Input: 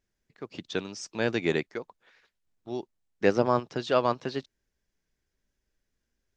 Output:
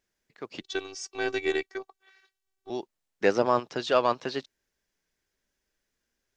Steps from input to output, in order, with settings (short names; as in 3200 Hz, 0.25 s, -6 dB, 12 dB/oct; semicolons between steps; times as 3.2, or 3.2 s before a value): low shelf 240 Hz -11.5 dB; in parallel at -5 dB: soft clip -21.5 dBFS, distortion -10 dB; 0.61–2.7 on the sum: robotiser 385 Hz